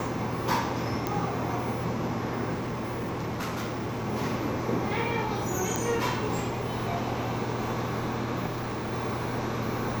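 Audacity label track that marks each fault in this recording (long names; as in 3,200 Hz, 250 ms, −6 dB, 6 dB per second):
1.070000	1.070000	click −14 dBFS
2.530000	4.070000	clipping −28.5 dBFS
5.760000	5.760000	click −12 dBFS
8.460000	8.930000	clipping −28.5 dBFS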